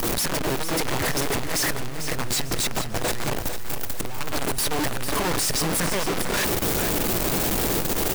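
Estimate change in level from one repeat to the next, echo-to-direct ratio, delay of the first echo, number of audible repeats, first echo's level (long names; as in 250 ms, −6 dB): −8.5 dB, −8.5 dB, 447 ms, 3, −9.0 dB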